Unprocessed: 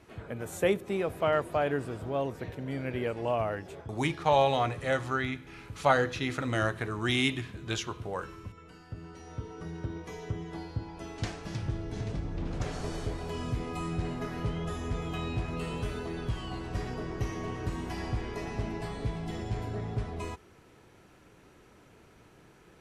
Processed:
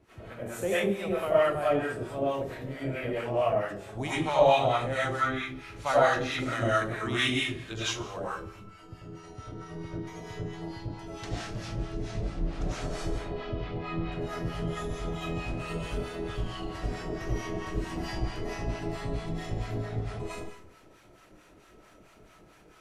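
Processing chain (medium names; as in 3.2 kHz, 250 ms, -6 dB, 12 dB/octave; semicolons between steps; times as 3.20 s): 13.05–14.12 s: low-pass 3.9 kHz 24 dB/octave; reverberation RT60 0.55 s, pre-delay 55 ms, DRR -8.5 dB; harmonic tremolo 4.5 Hz, depth 70%, crossover 750 Hz; trim -3.5 dB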